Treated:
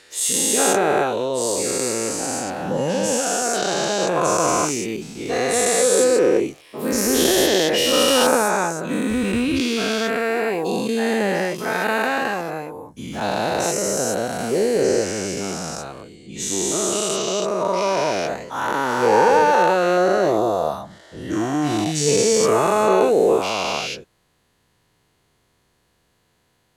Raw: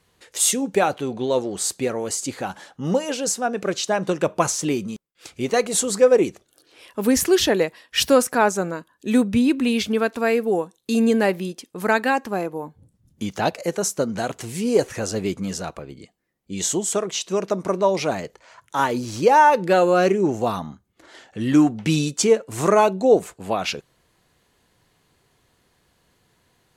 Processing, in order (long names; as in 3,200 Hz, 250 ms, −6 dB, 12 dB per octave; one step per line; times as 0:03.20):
every bin's largest magnitude spread in time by 480 ms
0:19.97–0:22.09: thirty-one-band graphic EQ 250 Hz −8 dB, 630 Hz +8 dB, 2,500 Hz −10 dB
level −7.5 dB